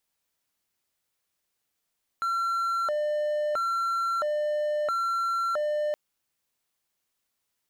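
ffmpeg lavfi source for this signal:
-f lavfi -i "aevalsrc='0.075*(1-4*abs(mod((979.5*t+380.5/0.75*(0.5-abs(mod(0.75*t,1)-0.5)))+0.25,1)-0.5))':d=3.72:s=44100"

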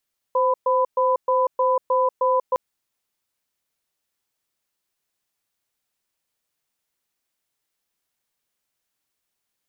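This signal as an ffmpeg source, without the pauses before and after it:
-f lavfi -i "aevalsrc='0.112*(sin(2*PI*518*t)+sin(2*PI*1000*t))*clip(min(mod(t,0.31),0.19-mod(t,0.31))/0.005,0,1)':d=2.21:s=44100"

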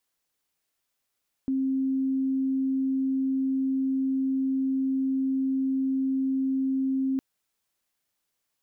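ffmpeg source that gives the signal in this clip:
-f lavfi -i "aevalsrc='0.0708*sin(2*PI*266*t)':d=5.71:s=44100"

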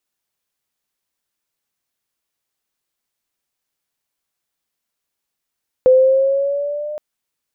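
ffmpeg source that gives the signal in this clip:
-f lavfi -i "aevalsrc='pow(10,(-6-18*t/1.12)/20)*sin(2*PI*510*1.12/(3*log(2)/12)*(exp(3*log(2)/12*t/1.12)-1))':d=1.12:s=44100"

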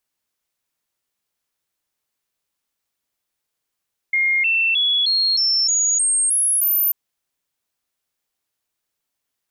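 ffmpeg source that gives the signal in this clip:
-f lavfi -i "aevalsrc='0.178*clip(min(mod(t,0.31),0.31-mod(t,0.31))/0.005,0,1)*sin(2*PI*2130*pow(2,floor(t/0.31)/3)*mod(t,0.31))':d=2.79:s=44100"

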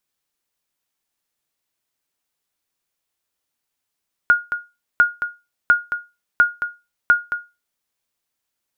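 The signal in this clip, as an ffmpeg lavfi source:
-f lavfi -i "aevalsrc='0.562*(sin(2*PI*1430*mod(t,0.7))*exp(-6.91*mod(t,0.7)/0.25)+0.316*sin(2*PI*1430*max(mod(t,0.7)-0.22,0))*exp(-6.91*max(mod(t,0.7)-0.22,0)/0.25))':d=3.5:s=44100"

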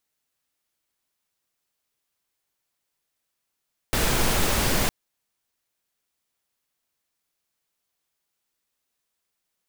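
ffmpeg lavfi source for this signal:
-f lavfi -i "anoisesrc=c=pink:a=0.407:d=0.96:r=44100:seed=1"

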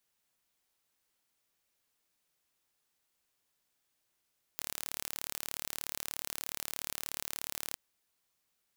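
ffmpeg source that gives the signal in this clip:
-f lavfi -i "aevalsrc='0.299*eq(mod(n,1198),0)':d=3.16:s=44100"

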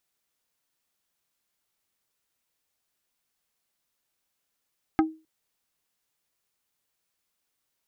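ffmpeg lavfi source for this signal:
-f lavfi -i "aevalsrc='0.178*pow(10,-3*t/0.3)*sin(2*PI*317*t)+0.112*pow(10,-3*t/0.1)*sin(2*PI*792.5*t)+0.0708*pow(10,-3*t/0.057)*sin(2*PI*1268*t)+0.0447*pow(10,-3*t/0.043)*sin(2*PI*1585*t)+0.0282*pow(10,-3*t/0.032)*sin(2*PI*2060.5*t)':d=0.26:s=44100"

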